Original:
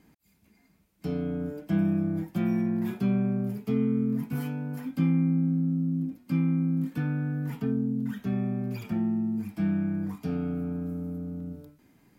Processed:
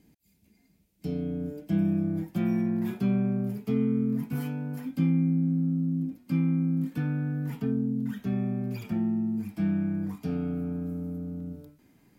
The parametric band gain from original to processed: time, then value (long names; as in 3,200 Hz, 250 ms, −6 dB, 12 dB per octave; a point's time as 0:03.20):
parametric band 1,200 Hz 1.4 octaves
0:01.37 −12 dB
0:02.49 −1.5 dB
0:04.68 −1.5 dB
0:05.38 −10 dB
0:05.65 −2.5 dB